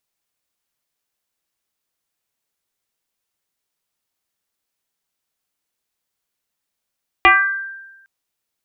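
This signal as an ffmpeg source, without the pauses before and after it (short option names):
-f lavfi -i "aevalsrc='0.562*pow(10,-3*t/1.1)*sin(2*PI*1580*t+2.7*pow(10,-3*t/0.73)*sin(2*PI*0.26*1580*t))':d=0.81:s=44100"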